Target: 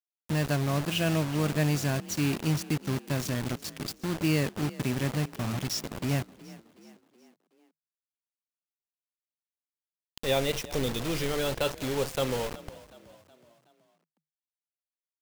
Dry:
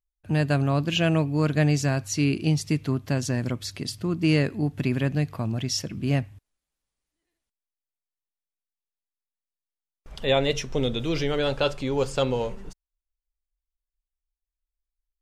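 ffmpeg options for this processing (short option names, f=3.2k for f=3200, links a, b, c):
-filter_complex "[0:a]acrusher=bits=4:mix=0:aa=0.000001,asplit=5[a][b][c][d][e];[b]adelay=371,afreqshift=38,volume=-19dB[f];[c]adelay=742,afreqshift=76,volume=-25.2dB[g];[d]adelay=1113,afreqshift=114,volume=-31.4dB[h];[e]adelay=1484,afreqshift=152,volume=-37.6dB[i];[a][f][g][h][i]amix=inputs=5:normalize=0,volume=-5dB"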